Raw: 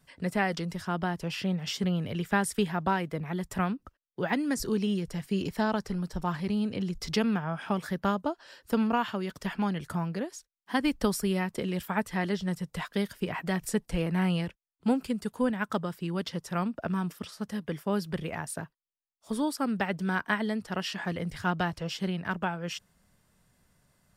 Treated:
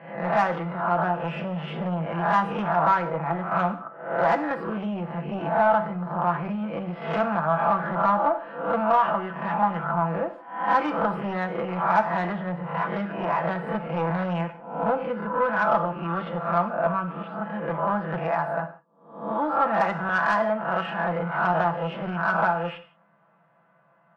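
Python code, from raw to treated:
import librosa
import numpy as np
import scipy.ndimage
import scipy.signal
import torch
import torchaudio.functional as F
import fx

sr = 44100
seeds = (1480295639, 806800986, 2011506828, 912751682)

y = fx.spec_swells(x, sr, rise_s=0.59)
y = scipy.signal.sosfilt(scipy.signal.ellip(3, 1.0, 40, [160.0, 2500.0], 'bandpass', fs=sr, output='sos'), y)
y = y + 0.65 * np.pad(y, (int(6.0 * sr / 1000.0), 0))[:len(y)]
y = 10.0 ** (-23.0 / 20.0) * np.tanh(y / 10.0 ** (-23.0 / 20.0))
y = fx.band_shelf(y, sr, hz=910.0, db=12.5, octaves=1.7)
y = fx.rev_gated(y, sr, seeds[0], gate_ms=200, shape='falling', drr_db=8.0)
y = y * 10.0 ** (-1.5 / 20.0)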